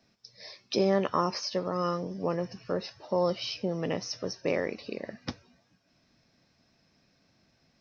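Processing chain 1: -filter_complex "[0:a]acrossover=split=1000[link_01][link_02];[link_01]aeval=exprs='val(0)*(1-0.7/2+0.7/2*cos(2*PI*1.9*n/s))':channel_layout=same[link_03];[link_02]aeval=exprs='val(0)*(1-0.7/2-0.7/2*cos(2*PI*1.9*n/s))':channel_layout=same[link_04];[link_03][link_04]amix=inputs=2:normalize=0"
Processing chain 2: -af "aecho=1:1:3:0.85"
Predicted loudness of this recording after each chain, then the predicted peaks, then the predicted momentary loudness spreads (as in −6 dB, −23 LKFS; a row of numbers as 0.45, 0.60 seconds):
−34.5, −30.0 LKFS; −16.5, −12.5 dBFS; 14, 15 LU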